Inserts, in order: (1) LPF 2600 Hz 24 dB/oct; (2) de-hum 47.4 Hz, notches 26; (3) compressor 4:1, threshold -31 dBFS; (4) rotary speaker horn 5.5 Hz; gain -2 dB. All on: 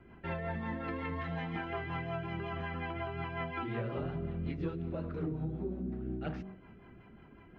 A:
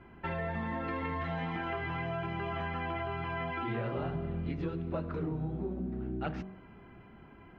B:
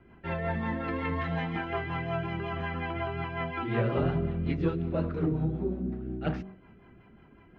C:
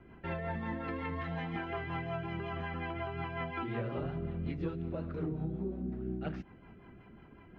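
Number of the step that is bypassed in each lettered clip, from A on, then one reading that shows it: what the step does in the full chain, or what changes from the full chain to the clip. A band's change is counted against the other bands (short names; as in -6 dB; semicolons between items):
4, 1 kHz band +2.0 dB; 3, mean gain reduction 5.0 dB; 2, momentary loudness spread change +3 LU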